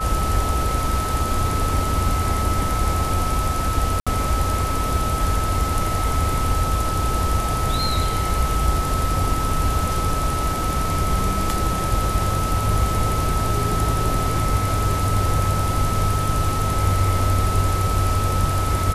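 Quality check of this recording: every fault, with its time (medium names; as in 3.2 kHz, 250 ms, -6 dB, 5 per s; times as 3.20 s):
whine 1.3 kHz -25 dBFS
4.00–4.07 s: dropout 66 ms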